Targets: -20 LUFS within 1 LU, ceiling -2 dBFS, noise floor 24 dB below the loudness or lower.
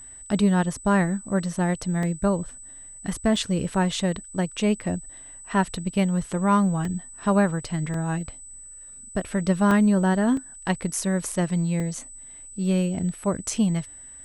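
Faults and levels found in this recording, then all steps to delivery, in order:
dropouts 8; longest dropout 2.4 ms; steady tone 8 kHz; tone level -41 dBFS; loudness -24.5 LUFS; peak level -9.5 dBFS; loudness target -20.0 LUFS
-> interpolate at 2.03/3.36/6.85/7.94/9.71/10.37/11.80/13.56 s, 2.4 ms; band-stop 8 kHz, Q 30; trim +4.5 dB

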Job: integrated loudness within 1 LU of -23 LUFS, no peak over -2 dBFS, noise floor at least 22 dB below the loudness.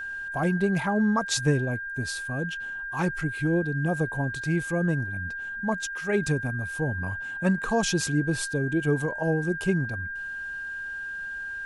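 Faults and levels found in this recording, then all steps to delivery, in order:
steady tone 1.6 kHz; tone level -32 dBFS; loudness -27.5 LUFS; peak level -11.0 dBFS; loudness target -23.0 LUFS
-> band-stop 1.6 kHz, Q 30; trim +4.5 dB

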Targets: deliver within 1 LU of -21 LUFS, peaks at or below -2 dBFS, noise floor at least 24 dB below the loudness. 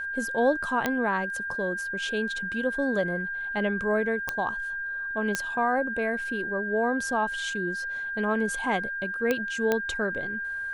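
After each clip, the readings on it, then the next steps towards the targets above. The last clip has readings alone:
clicks found 5; steady tone 1.6 kHz; tone level -30 dBFS; loudness -28.0 LUFS; peak level -10.5 dBFS; loudness target -21.0 LUFS
-> de-click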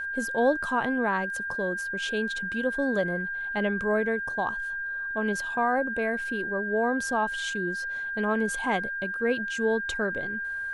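clicks found 0; steady tone 1.6 kHz; tone level -30 dBFS
-> band-stop 1.6 kHz, Q 30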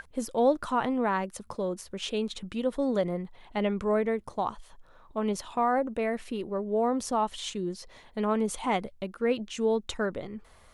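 steady tone not found; loudness -30.0 LUFS; peak level -13.0 dBFS; loudness target -21.0 LUFS
-> trim +9 dB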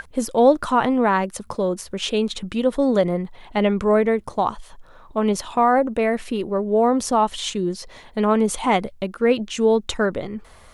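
loudness -21.0 LUFS; peak level -4.0 dBFS; noise floor -47 dBFS

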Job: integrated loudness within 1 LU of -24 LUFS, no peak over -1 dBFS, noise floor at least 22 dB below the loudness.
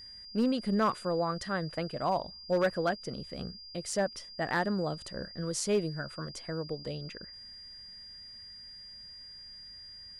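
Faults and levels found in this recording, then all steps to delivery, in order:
clipped samples 0.3%; clipping level -21.0 dBFS; steady tone 4.8 kHz; tone level -46 dBFS; loudness -33.0 LUFS; peak level -21.0 dBFS; loudness target -24.0 LUFS
-> clip repair -21 dBFS; band-stop 4.8 kHz, Q 30; trim +9 dB

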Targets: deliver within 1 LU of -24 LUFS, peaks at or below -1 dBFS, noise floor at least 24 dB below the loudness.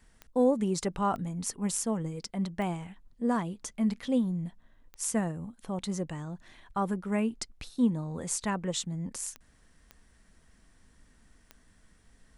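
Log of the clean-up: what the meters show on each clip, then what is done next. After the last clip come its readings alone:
clicks found 7; loudness -32.0 LUFS; peak level -14.5 dBFS; loudness target -24.0 LUFS
-> de-click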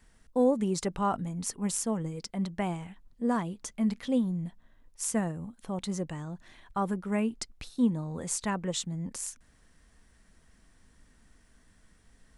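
clicks found 0; loudness -32.0 LUFS; peak level -14.5 dBFS; loudness target -24.0 LUFS
-> trim +8 dB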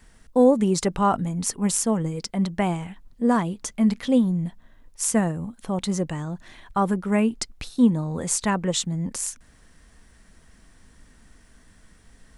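loudness -24.0 LUFS; peak level -6.5 dBFS; noise floor -55 dBFS

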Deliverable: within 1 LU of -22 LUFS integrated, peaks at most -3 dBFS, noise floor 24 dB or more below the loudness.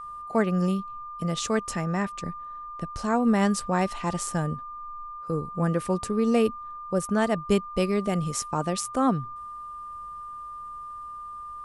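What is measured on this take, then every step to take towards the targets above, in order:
steady tone 1.2 kHz; tone level -36 dBFS; loudness -27.0 LUFS; peak level -9.5 dBFS; loudness target -22.0 LUFS
-> band-stop 1.2 kHz, Q 30; trim +5 dB

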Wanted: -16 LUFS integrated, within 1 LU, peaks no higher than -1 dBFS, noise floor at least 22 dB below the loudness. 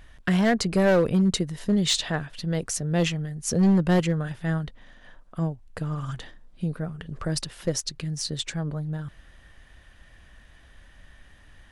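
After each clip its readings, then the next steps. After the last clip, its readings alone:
clipped samples 1.0%; clipping level -15.0 dBFS; loudness -26.0 LUFS; peak level -15.0 dBFS; loudness target -16.0 LUFS
-> clip repair -15 dBFS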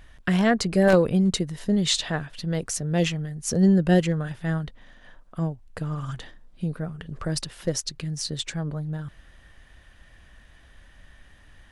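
clipped samples 0.0%; loudness -25.0 LUFS; peak level -6.0 dBFS; loudness target -16.0 LUFS
-> trim +9 dB; peak limiter -1 dBFS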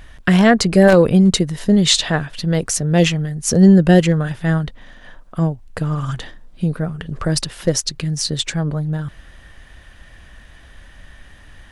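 loudness -16.5 LUFS; peak level -1.0 dBFS; noise floor -44 dBFS

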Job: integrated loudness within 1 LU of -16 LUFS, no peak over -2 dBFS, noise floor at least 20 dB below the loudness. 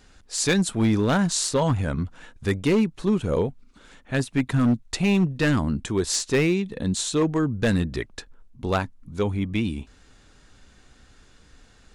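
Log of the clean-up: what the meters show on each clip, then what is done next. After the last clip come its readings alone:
clipped samples 1.7%; clipping level -15.0 dBFS; loudness -24.0 LUFS; peak level -15.0 dBFS; loudness target -16.0 LUFS
-> clip repair -15 dBFS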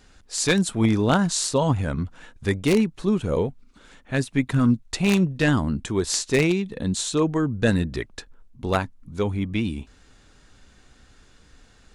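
clipped samples 0.0%; loudness -23.5 LUFS; peak level -6.0 dBFS; loudness target -16.0 LUFS
-> trim +7.5 dB; peak limiter -2 dBFS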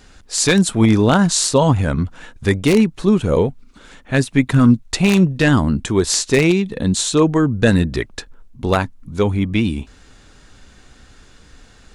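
loudness -16.5 LUFS; peak level -2.0 dBFS; noise floor -47 dBFS

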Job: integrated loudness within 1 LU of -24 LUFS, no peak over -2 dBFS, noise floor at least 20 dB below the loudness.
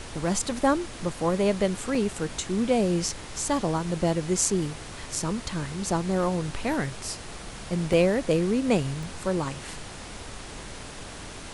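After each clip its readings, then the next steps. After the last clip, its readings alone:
dropouts 3; longest dropout 1.8 ms; noise floor -41 dBFS; noise floor target -47 dBFS; loudness -27.0 LUFS; peak level -7.0 dBFS; loudness target -24.0 LUFS
-> interpolate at 1.95/7.93/9.03 s, 1.8 ms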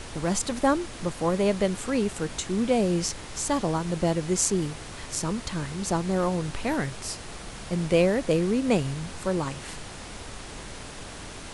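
dropouts 0; noise floor -41 dBFS; noise floor target -47 dBFS
-> noise print and reduce 6 dB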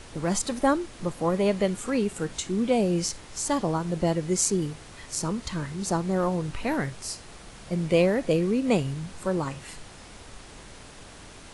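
noise floor -46 dBFS; noise floor target -47 dBFS
-> noise print and reduce 6 dB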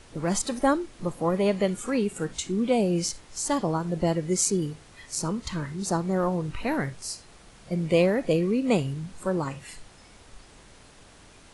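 noise floor -52 dBFS; loudness -27.0 LUFS; peak level -7.0 dBFS; loudness target -24.0 LUFS
-> trim +3 dB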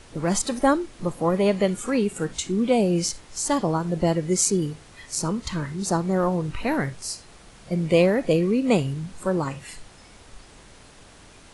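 loudness -24.0 LUFS; peak level -4.0 dBFS; noise floor -49 dBFS

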